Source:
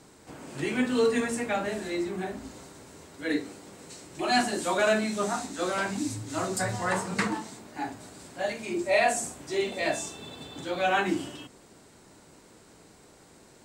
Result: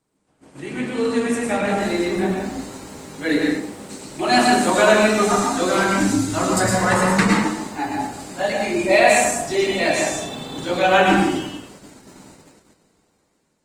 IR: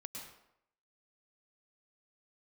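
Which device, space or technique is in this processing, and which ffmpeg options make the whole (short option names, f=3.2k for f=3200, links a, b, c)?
speakerphone in a meeting room: -filter_complex "[0:a]asettb=1/sr,asplit=3[a][b][c];[a]atrim=end=4.934[d];[b]atrim=start=4.93:end=5.4,asetpts=PTS-STARTPTS,afade=t=in:d=0.004:c=qsin,afade=t=out:st=0.466:d=0.004:c=qsin,aecho=1:1:2.5:0.43,atrim=end_sample=20727[e];[c]atrim=start=5.396[f];[d][e]acrossfade=d=0.004:c1=hsin:c2=qsin[g];[g][f]acrossfade=d=0.004:c1=qsin:c2=hsin[h];[1:a]atrim=start_sample=2205[i];[h][i]afir=irnorm=-1:irlink=0,dynaudnorm=f=550:g=5:m=12dB,agate=range=-15dB:threshold=-45dB:ratio=16:detection=peak,volume=2.5dB" -ar 48000 -c:a libopus -b:a 24k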